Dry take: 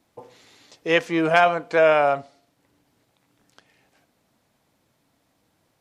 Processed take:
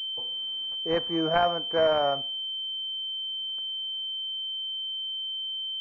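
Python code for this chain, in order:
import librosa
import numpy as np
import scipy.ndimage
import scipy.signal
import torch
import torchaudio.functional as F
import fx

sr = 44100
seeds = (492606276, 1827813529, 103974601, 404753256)

y = fx.pwm(x, sr, carrier_hz=3100.0)
y = y * 10.0 ** (-6.0 / 20.0)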